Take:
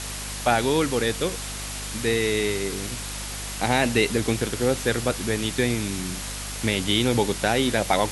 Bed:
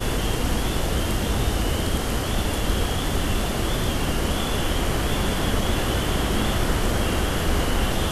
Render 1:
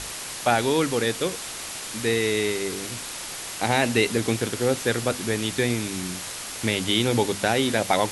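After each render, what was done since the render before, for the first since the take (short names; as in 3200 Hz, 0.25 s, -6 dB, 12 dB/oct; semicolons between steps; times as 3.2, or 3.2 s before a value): notches 50/100/150/200/250 Hz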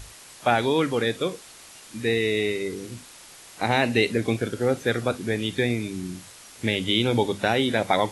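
noise print and reduce 12 dB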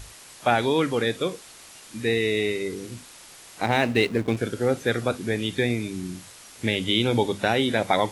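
3.63–4.37 backlash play -30 dBFS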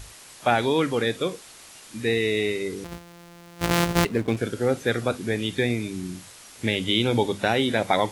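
2.84–4.05 sample sorter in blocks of 256 samples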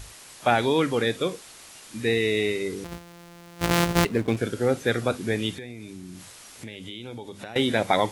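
5.54–7.56 compressor 4:1, threshold -37 dBFS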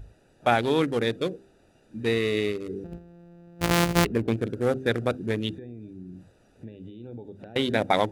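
Wiener smoothing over 41 samples; de-hum 65.41 Hz, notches 6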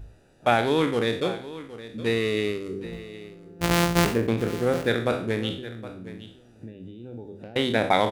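spectral trails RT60 0.47 s; echo 0.767 s -15.5 dB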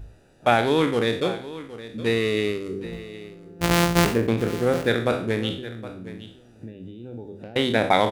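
gain +2 dB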